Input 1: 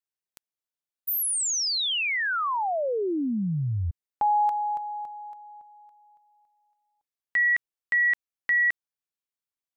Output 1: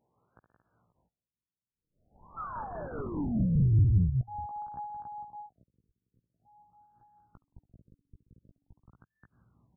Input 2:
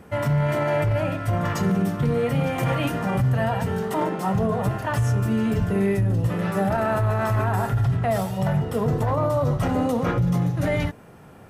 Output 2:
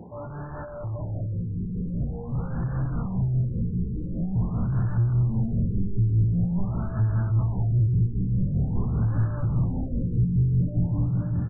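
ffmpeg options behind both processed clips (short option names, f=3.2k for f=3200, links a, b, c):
-filter_complex "[0:a]aecho=1:1:70|129|173|228|530:0.335|0.211|0.376|0.112|0.119,areverse,acompressor=threshold=-29dB:ratio=6:attack=41:release=82:knee=6:detection=rms,areverse,highpass=100,lowpass=2.3k,aeval=exprs='0.0376*(abs(mod(val(0)/0.0376+3,4)-2)-1)':c=same,acompressor=mode=upward:threshold=-53dB:ratio=2.5:attack=0.23:release=55:knee=2.83:detection=peak,lowshelf=f=260:g=6,asplit=2[a][b];[b]adelay=17,volume=-4dB[c];[a][c]amix=inputs=2:normalize=0,asoftclip=type=tanh:threshold=-37dB,asubboost=boost=9.5:cutoff=170,tremolo=f=5:d=0.38,afftfilt=real='re*lt(b*sr/1024,470*pow(1800/470,0.5+0.5*sin(2*PI*0.46*pts/sr)))':imag='im*lt(b*sr/1024,470*pow(1800/470,0.5+0.5*sin(2*PI*0.46*pts/sr)))':win_size=1024:overlap=0.75,volume=4dB"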